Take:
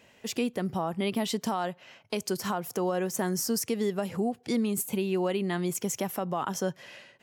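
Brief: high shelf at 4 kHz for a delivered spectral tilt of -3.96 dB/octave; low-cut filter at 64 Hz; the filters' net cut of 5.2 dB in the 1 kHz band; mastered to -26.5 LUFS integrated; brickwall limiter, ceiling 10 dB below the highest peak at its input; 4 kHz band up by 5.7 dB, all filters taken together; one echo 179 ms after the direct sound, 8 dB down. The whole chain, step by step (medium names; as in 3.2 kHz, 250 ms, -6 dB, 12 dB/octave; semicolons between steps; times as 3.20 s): high-pass 64 Hz; peaking EQ 1 kHz -8 dB; treble shelf 4 kHz +5.5 dB; peaking EQ 4 kHz +4.5 dB; peak limiter -23 dBFS; delay 179 ms -8 dB; trim +5.5 dB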